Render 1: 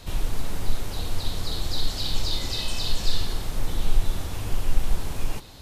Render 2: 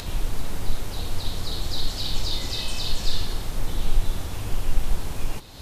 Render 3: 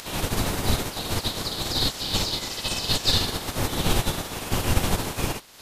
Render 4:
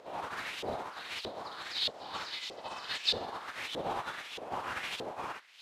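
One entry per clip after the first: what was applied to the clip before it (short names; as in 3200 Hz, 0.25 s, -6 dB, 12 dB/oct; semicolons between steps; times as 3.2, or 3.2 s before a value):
upward compressor, threshold -27 dBFS
spectral limiter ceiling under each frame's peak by 26 dB; gain -6.5 dB
LFO band-pass saw up 1.6 Hz 490–3300 Hz; gain -1 dB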